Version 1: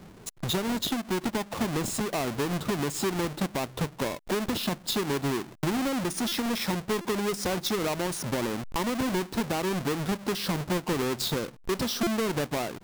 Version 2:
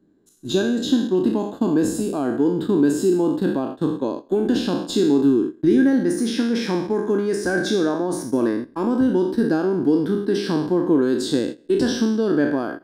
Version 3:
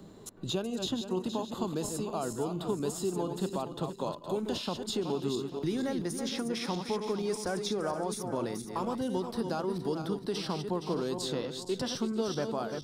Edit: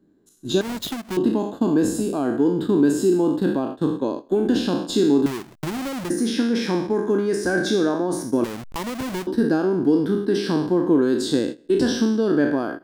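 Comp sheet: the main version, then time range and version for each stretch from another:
2
0:00.61–0:01.17: punch in from 1
0:05.26–0:06.10: punch in from 1
0:08.44–0:09.27: punch in from 1
not used: 3

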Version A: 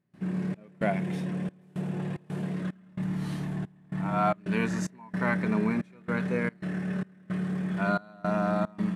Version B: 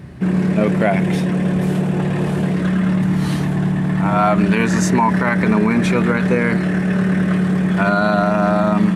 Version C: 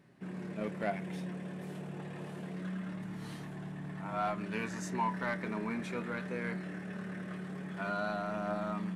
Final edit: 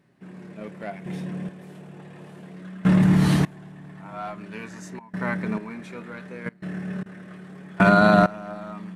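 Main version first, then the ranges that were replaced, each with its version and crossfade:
C
0:01.06–0:01.49: punch in from A
0:02.85–0:03.45: punch in from B
0:04.99–0:05.58: punch in from A
0:06.46–0:07.06: punch in from A
0:07.80–0:08.26: punch in from B

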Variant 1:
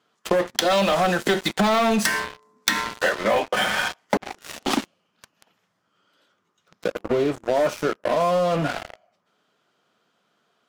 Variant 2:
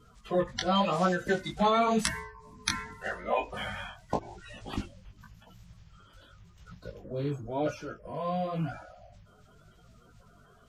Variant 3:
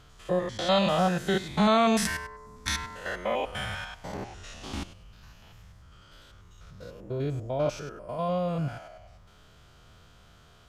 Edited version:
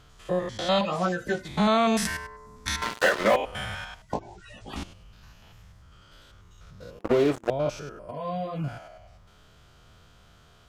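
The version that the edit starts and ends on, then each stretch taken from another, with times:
3
0:00.81–0:01.45: punch in from 2
0:02.82–0:03.36: punch in from 1
0:04.02–0:04.76: punch in from 2
0:06.99–0:07.50: punch in from 1
0:08.11–0:08.64: punch in from 2

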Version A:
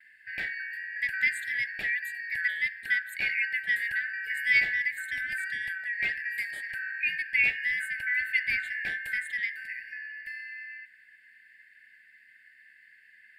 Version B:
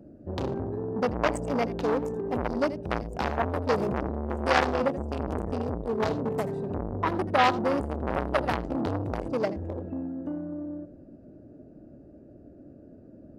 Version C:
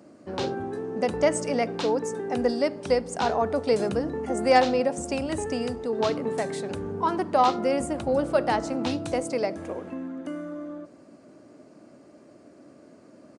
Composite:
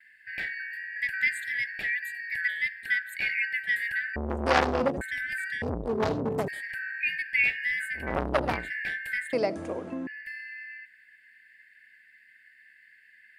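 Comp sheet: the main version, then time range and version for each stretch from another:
A
0:04.16–0:05.01: punch in from B
0:05.62–0:06.48: punch in from B
0:08.05–0:08.59: punch in from B, crossfade 0.24 s
0:09.33–0:10.07: punch in from C

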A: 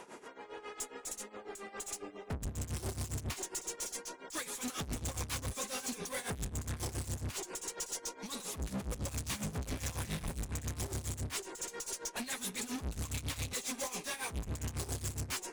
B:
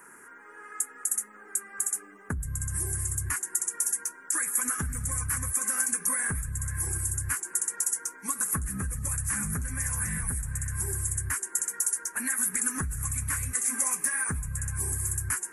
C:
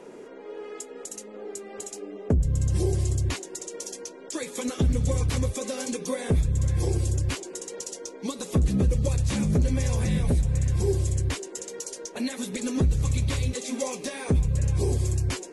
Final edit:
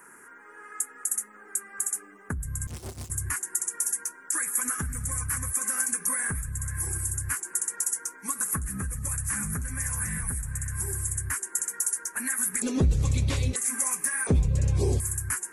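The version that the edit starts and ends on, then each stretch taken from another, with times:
B
0:02.67–0:03.10: punch in from A
0:12.62–0:13.56: punch in from C
0:14.27–0:15.00: punch in from C

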